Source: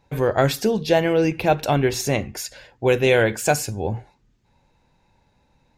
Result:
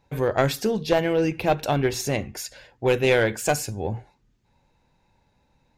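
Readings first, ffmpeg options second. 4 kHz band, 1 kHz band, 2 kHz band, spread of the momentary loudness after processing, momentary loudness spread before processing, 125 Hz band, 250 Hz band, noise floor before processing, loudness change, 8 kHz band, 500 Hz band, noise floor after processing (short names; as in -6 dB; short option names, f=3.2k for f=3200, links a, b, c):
-2.5 dB, -3.0 dB, -2.5 dB, 12 LU, 12 LU, -3.5 dB, -3.0 dB, -64 dBFS, -3.0 dB, -3.0 dB, -3.0 dB, -67 dBFS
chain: -af "aeval=exprs='0.631*(cos(1*acos(clip(val(0)/0.631,-1,1)))-cos(1*PI/2))+0.178*(cos(2*acos(clip(val(0)/0.631,-1,1)))-cos(2*PI/2))+0.0178*(cos(8*acos(clip(val(0)/0.631,-1,1)))-cos(8*PI/2))':c=same,volume=-3dB"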